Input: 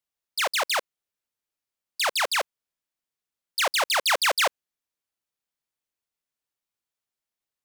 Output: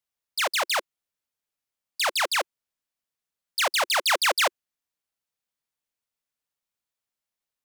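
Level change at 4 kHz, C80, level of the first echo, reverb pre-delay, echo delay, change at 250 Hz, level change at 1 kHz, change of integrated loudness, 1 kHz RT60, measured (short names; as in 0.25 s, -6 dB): 0.0 dB, none, none, none, none, -2.0 dB, 0.0 dB, 0.0 dB, none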